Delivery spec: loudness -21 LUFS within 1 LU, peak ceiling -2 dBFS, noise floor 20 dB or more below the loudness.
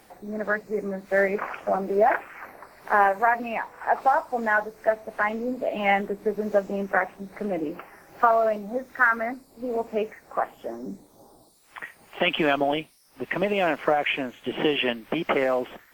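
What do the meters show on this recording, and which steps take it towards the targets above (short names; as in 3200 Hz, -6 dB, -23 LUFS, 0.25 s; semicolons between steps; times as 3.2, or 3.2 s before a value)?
loudness -25.0 LUFS; peak -4.5 dBFS; loudness target -21.0 LUFS
-> gain +4 dB; limiter -2 dBFS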